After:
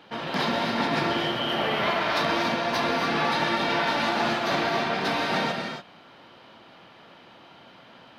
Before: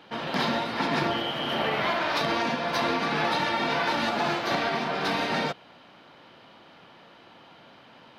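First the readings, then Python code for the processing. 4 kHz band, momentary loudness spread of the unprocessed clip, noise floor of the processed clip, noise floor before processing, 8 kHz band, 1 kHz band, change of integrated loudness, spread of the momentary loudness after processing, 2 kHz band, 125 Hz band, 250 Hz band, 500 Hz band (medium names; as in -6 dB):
+2.0 dB, 3 LU, -51 dBFS, -53 dBFS, +1.5 dB, +1.5 dB, +1.5 dB, 3 LU, +1.5 dB, +1.5 dB, +1.5 dB, +1.5 dB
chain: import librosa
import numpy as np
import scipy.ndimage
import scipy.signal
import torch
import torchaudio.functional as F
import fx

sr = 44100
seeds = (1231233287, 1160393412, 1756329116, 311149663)

y = fx.rev_gated(x, sr, seeds[0], gate_ms=310, shape='rising', drr_db=3.5)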